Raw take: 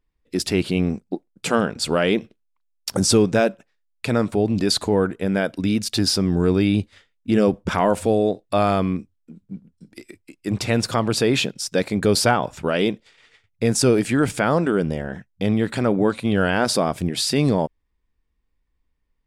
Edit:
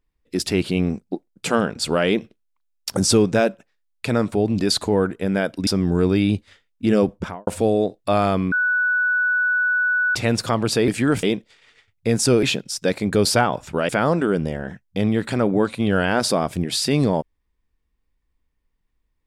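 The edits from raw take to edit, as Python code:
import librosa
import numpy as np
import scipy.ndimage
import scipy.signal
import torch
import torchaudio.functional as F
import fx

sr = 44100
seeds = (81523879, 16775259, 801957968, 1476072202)

y = fx.studio_fade_out(x, sr, start_s=7.55, length_s=0.37)
y = fx.edit(y, sr, fx.cut(start_s=5.67, length_s=0.45),
    fx.bleep(start_s=8.97, length_s=1.63, hz=1480.0, db=-16.5),
    fx.swap(start_s=11.33, length_s=1.46, other_s=13.99, other_length_s=0.35), tone=tone)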